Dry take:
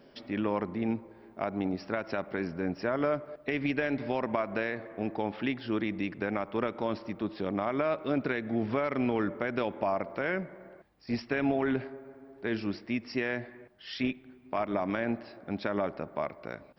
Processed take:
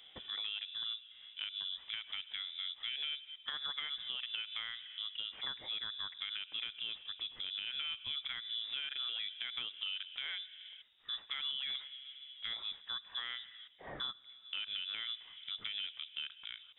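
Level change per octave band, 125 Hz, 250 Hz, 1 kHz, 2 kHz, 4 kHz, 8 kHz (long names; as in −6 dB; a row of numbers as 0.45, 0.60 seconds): below −25 dB, below −35 dB, −18.5 dB, −9.0 dB, +12.5 dB, can't be measured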